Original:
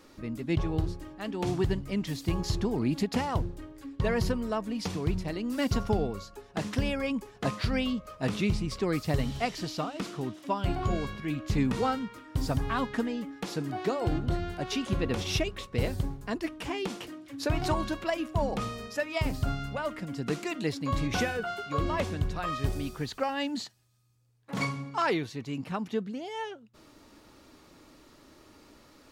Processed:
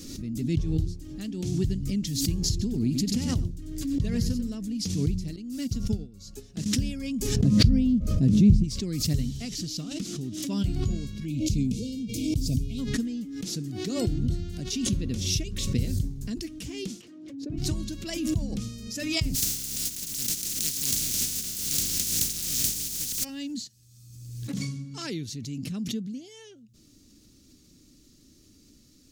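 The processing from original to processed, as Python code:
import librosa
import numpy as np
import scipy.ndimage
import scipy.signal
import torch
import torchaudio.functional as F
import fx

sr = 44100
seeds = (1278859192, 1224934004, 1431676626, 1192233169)

y = fx.echo_single(x, sr, ms=93, db=-9.5, at=(2.5, 4.55))
y = fx.upward_expand(y, sr, threshold_db=-45.0, expansion=2.5, at=(5.36, 6.66))
y = fx.tilt_shelf(y, sr, db=9.0, hz=780.0, at=(7.36, 8.64))
y = fx.brickwall_bandstop(y, sr, low_hz=690.0, high_hz=2100.0, at=(11.25, 12.78), fade=0.02)
y = fx.bandpass_q(y, sr, hz=fx.line((17.0, 1200.0), (17.57, 280.0)), q=1.2, at=(17.0, 17.57), fade=0.02)
y = fx.spec_flatten(y, sr, power=0.13, at=(19.34, 23.23), fade=0.02)
y = fx.curve_eq(y, sr, hz=(240.0, 900.0, 6400.0, 9100.0), db=(0, -28, 4, 0))
y = fx.pre_swell(y, sr, db_per_s=40.0)
y = y * librosa.db_to_amplitude(2.0)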